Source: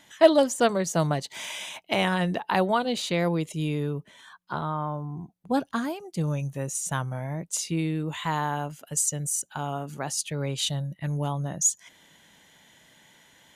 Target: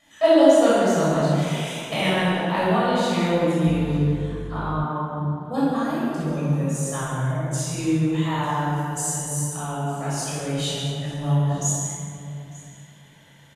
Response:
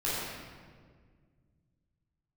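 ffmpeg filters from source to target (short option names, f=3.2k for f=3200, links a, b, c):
-filter_complex "[0:a]asettb=1/sr,asplit=3[a][b][c];[a]atrim=end=1.634[d];[b]atrim=start=1.63:end=2.09,asetpts=PTS-STARTPTS,afade=t=in:d=0.004:c=qsin,afade=t=out:st=0.456:d=0.004:c=qsin,highshelf=f=4.3k:g=7[e];[c]atrim=start=2.086[f];[d][e]acrossfade=d=0.004:c1=hsin:c2=qsin[g];[g][f]acrossfade=d=0.004:c1=qsin:c2=hsin,aecho=1:1:899:0.0841[h];[1:a]atrim=start_sample=2205,asetrate=29988,aresample=44100[i];[h][i]afir=irnorm=-1:irlink=0,asettb=1/sr,asplit=3[j][k][l];[j]atrim=end=3.674[m];[k]atrim=start=3.67:end=4.84,asetpts=PTS-STARTPTS,afade=t=in:d=0.004:c=qsin,afade=t=out:st=1.166:d=0.004:c=qsin,aeval=exprs='val(0)+0.0631*(sin(2*PI*50*n/s)+sin(2*PI*2*50*n/s)/2+sin(2*PI*3*50*n/s)/3+sin(2*PI*4*50*n/s)/4+sin(2*PI*5*50*n/s)/5)':c=same[n];[l]atrim=start=4.836[o];[m][n]acrossfade=d=0.004:c1=hsin:c2=qsin[p];[p][o]acrossfade=d=0.004:c1=qsin:c2=hsin,volume=-8dB"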